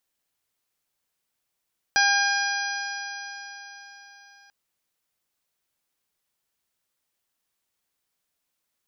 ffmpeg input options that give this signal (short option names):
-f lavfi -i "aevalsrc='0.0708*pow(10,-3*t/4.22)*sin(2*PI*801.72*t)+0.119*pow(10,-3*t/4.22)*sin(2*PI*1607.76*t)+0.0355*pow(10,-3*t/4.22)*sin(2*PI*2422.39*t)+0.0224*pow(10,-3*t/4.22)*sin(2*PI*3249.81*t)+0.0266*pow(10,-3*t/4.22)*sin(2*PI*4094.12*t)+0.0596*pow(10,-3*t/4.22)*sin(2*PI*4959.27*t)+0.0398*pow(10,-3*t/4.22)*sin(2*PI*5849.04*t)':d=2.54:s=44100"